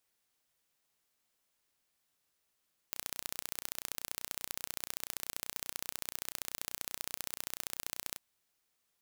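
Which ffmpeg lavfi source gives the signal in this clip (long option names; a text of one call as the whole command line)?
ffmpeg -f lavfi -i "aevalsrc='0.355*eq(mod(n,1451),0)*(0.5+0.5*eq(mod(n,2902),0))':duration=5.26:sample_rate=44100" out.wav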